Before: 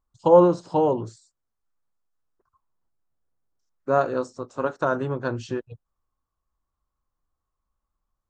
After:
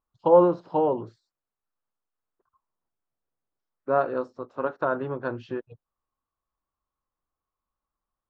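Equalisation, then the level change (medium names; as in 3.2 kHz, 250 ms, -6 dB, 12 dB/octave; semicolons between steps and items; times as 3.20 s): distance through air 340 m; bass shelf 160 Hz -12 dB; 0.0 dB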